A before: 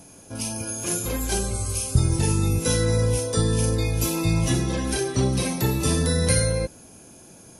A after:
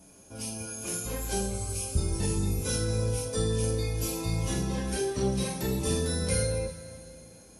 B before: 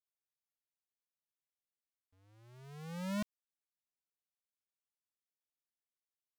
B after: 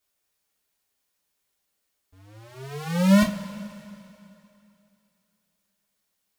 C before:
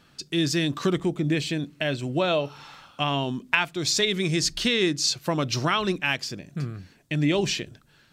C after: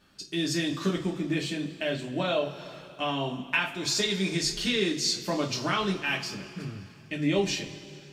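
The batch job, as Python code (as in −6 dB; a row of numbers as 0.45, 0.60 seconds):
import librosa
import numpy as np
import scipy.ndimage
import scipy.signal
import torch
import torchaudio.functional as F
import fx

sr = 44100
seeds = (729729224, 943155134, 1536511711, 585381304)

y = fx.rev_double_slope(x, sr, seeds[0], early_s=0.22, late_s=2.8, knee_db=-21, drr_db=-2.5)
y = y * 10.0 ** (-30 / 20.0) / np.sqrt(np.mean(np.square(y)))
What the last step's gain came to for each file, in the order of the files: −11.0, +13.5, −8.0 decibels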